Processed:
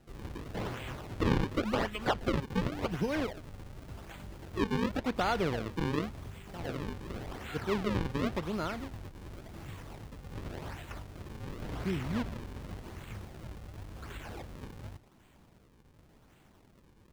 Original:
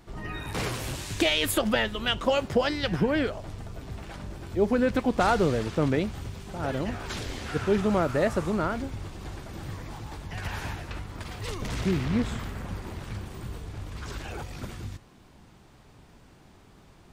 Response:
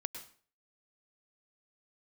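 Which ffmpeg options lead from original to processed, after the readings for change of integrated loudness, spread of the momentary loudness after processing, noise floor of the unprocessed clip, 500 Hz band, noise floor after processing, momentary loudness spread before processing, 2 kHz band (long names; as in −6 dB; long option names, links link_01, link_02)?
−7.0 dB, 16 LU, −55 dBFS, −8.5 dB, −62 dBFS, 15 LU, −8.0 dB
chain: -filter_complex "[0:a]highshelf=frequency=4900:width_type=q:width=3:gain=-14,acrusher=samples=38:mix=1:aa=0.000001:lfo=1:lforange=60.8:lforate=0.9,acrossover=split=4700[link_01][link_02];[link_02]acompressor=threshold=-47dB:ratio=4:attack=1:release=60[link_03];[link_01][link_03]amix=inputs=2:normalize=0,volume=-7.5dB"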